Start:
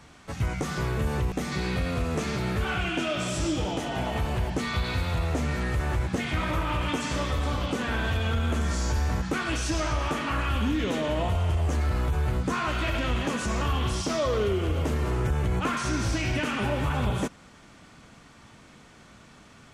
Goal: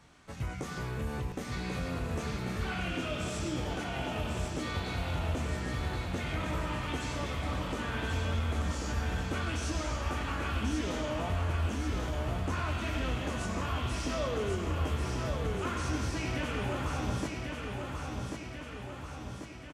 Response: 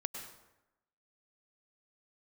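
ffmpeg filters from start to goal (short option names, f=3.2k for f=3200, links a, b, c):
-filter_complex "[0:a]aecho=1:1:1090|2180|3270|4360|5450|6540|7630|8720:0.596|0.351|0.207|0.122|0.0722|0.0426|0.0251|0.0148,asplit=2[a][b];[1:a]atrim=start_sample=2205,asetrate=66150,aresample=44100,adelay=23[c];[b][c]afir=irnorm=-1:irlink=0,volume=-4.5dB[d];[a][d]amix=inputs=2:normalize=0,volume=-8.5dB"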